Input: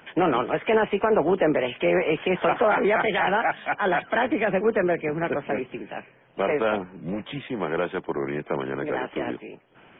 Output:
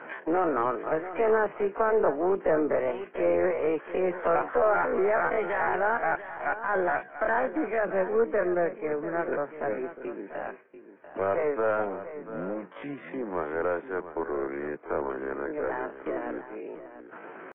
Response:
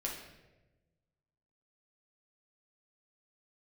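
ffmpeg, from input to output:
-filter_complex "[0:a]highpass=350,asplit=2[s0][s1];[s1]aeval=exprs='clip(val(0),-1,0.0237)':c=same,volume=0.501[s2];[s0][s2]amix=inputs=2:normalize=0,lowpass=f=1700:w=0.5412,lowpass=f=1700:w=1.3066,equalizer=f=790:w=4.4:g=-4,acompressor=mode=upward:threshold=0.0501:ratio=2.5,atempo=0.57,agate=range=0.0224:threshold=0.0126:ratio=3:detection=peak,asplit=2[s3][s4];[s4]aecho=0:1:691:0.237[s5];[s3][s5]amix=inputs=2:normalize=0,volume=0.631"

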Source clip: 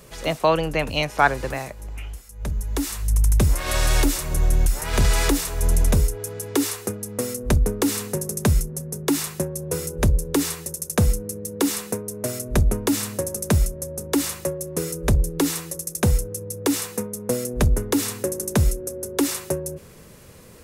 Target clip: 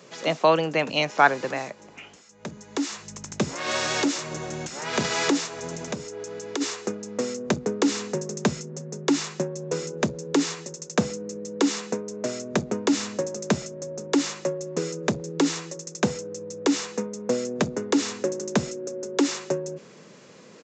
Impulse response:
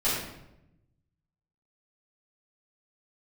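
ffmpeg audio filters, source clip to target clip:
-filter_complex "[0:a]highpass=f=170:w=0.5412,highpass=f=170:w=1.3066,asplit=3[s0][s1][s2];[s0]afade=t=out:st=5.46:d=0.02[s3];[s1]acompressor=threshold=0.0447:ratio=6,afade=t=in:st=5.46:d=0.02,afade=t=out:st=6.6:d=0.02[s4];[s2]afade=t=in:st=6.6:d=0.02[s5];[s3][s4][s5]amix=inputs=3:normalize=0,aresample=16000,aresample=44100"

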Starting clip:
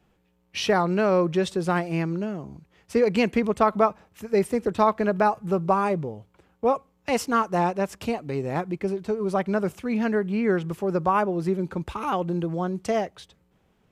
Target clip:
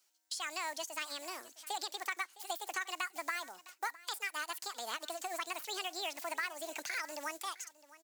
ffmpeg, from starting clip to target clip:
-filter_complex "[0:a]agate=range=0.316:threshold=0.00112:ratio=16:detection=peak,asplit=2[s0][s1];[s1]acrusher=bits=5:mode=log:mix=0:aa=0.000001,volume=0.282[s2];[s0][s2]amix=inputs=2:normalize=0,highpass=f=200:p=1,aderivative,asetrate=76440,aresample=44100,acompressor=threshold=0.00316:ratio=4,equalizer=f=7200:t=o:w=0.61:g=8.5,acrossover=split=4000[s3][s4];[s4]acompressor=threshold=0.00158:ratio=4:attack=1:release=60[s5];[s3][s5]amix=inputs=2:normalize=0,asplit=2[s6][s7];[s7]aecho=0:1:660:0.112[s8];[s6][s8]amix=inputs=2:normalize=0,volume=4.73"

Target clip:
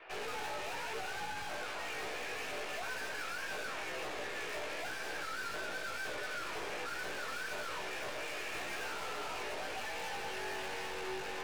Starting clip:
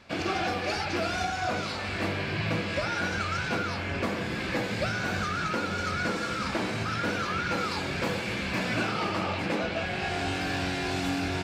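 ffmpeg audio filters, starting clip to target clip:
-af "highpass=f=290:t=q:w=0.5412,highpass=f=290:t=q:w=1.307,lowpass=f=3000:t=q:w=0.5176,lowpass=f=3000:t=q:w=0.7071,lowpass=f=3000:t=q:w=1.932,afreqshift=100,aeval=exprs='(tanh(158*val(0)+0.4)-tanh(0.4))/158':c=same,flanger=delay=15.5:depth=3.2:speed=1,volume=2.24"

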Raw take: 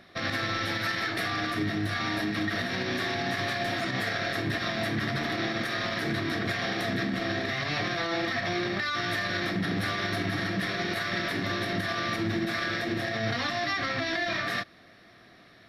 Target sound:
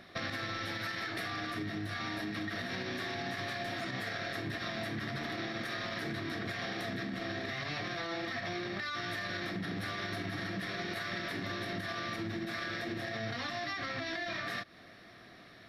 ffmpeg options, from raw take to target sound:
-af "acompressor=threshold=0.0178:ratio=6"

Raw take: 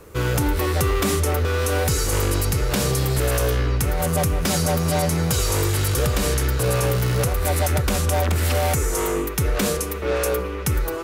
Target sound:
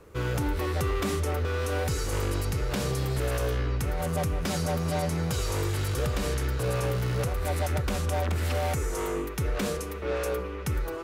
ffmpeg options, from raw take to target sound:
-af "highshelf=f=6700:g=-9,volume=0.447"

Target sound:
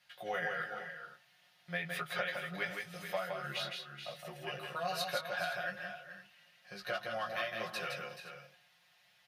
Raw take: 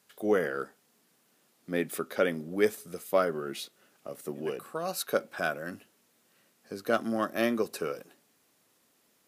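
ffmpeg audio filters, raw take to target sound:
-filter_complex "[0:a]firequalizer=gain_entry='entry(150,0);entry(250,-26);entry(670,1);entry(1100,-4);entry(1700,5);entry(2500,9);entry(7600,-11)':delay=0.05:min_phase=1,flanger=delay=15:depth=3.8:speed=0.87,bandreject=f=50:t=h:w=6,bandreject=f=100:t=h:w=6,bandreject=f=150:t=h:w=6,acompressor=threshold=0.0158:ratio=12,equalizer=f=2400:w=4:g=-4,bandreject=f=7600:w=15,aecho=1:1:5.6:0.82,asplit=2[s0][s1];[s1]aecho=0:1:164|430|472|515:0.596|0.299|0.141|0.158[s2];[s0][s2]amix=inputs=2:normalize=0,volume=1.12"

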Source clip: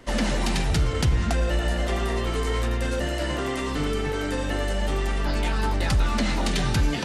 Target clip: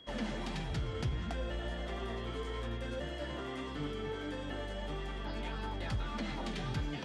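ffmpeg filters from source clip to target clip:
-af "highpass=47,aemphasis=mode=reproduction:type=50fm,aeval=exprs='val(0)+0.00891*sin(2*PI*3300*n/s)':c=same,flanger=delay=6.1:depth=3.2:regen=68:speed=1.6:shape=sinusoidal,volume=0.376"

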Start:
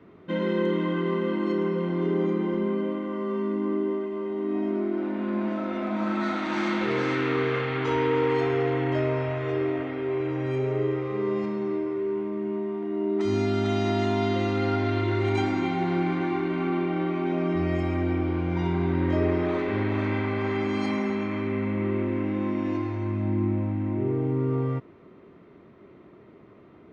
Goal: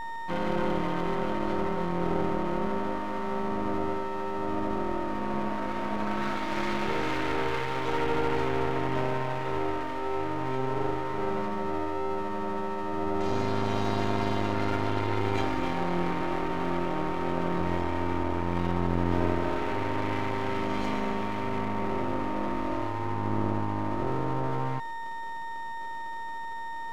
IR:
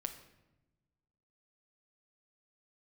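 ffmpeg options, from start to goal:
-af "aeval=exprs='val(0)+0.0355*sin(2*PI*920*n/s)':c=same,aeval=exprs='max(val(0),0)':c=same"

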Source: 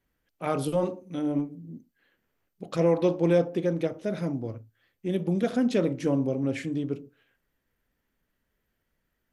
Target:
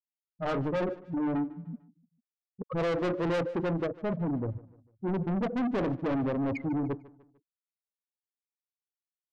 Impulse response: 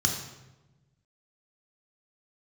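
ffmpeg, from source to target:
-af "afftfilt=real='re*gte(hypot(re,im),0.0891)':imag='im*gte(hypot(re,im),0.0891)':win_size=1024:overlap=0.75,acontrast=35,asoftclip=type=tanh:threshold=0.0473,atempo=1,aecho=1:1:149|298|447:0.1|0.043|0.0185"

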